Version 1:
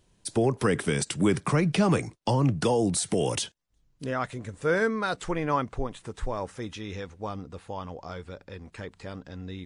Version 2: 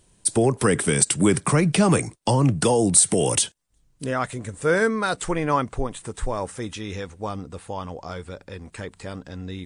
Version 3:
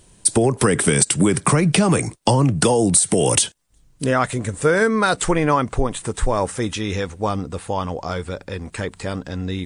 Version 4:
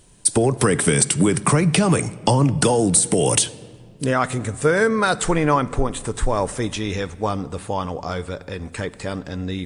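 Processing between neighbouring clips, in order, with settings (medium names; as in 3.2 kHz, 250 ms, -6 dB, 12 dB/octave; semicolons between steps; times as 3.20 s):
peaking EQ 8.7 kHz +11.5 dB 0.5 oct; trim +4.5 dB
compression 12:1, threshold -20 dBFS, peak gain reduction 10 dB; trim +8 dB
simulated room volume 3100 m³, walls mixed, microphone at 0.35 m; trim -1 dB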